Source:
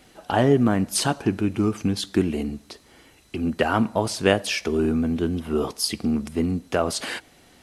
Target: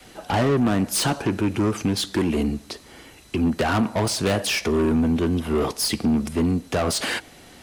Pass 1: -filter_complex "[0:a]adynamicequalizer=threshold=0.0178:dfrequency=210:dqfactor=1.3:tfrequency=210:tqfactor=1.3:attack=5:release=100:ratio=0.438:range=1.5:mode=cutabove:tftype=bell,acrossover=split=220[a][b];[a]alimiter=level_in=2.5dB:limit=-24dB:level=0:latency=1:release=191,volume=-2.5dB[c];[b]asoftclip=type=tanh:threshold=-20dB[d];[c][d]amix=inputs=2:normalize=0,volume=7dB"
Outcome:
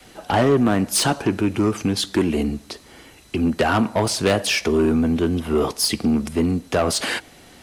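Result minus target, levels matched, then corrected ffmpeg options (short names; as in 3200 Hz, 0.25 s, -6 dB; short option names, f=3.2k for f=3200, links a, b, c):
soft clip: distortion -4 dB
-filter_complex "[0:a]adynamicequalizer=threshold=0.0178:dfrequency=210:dqfactor=1.3:tfrequency=210:tqfactor=1.3:attack=5:release=100:ratio=0.438:range=1.5:mode=cutabove:tftype=bell,acrossover=split=220[a][b];[a]alimiter=level_in=2.5dB:limit=-24dB:level=0:latency=1:release=191,volume=-2.5dB[c];[b]asoftclip=type=tanh:threshold=-26.5dB[d];[c][d]amix=inputs=2:normalize=0,volume=7dB"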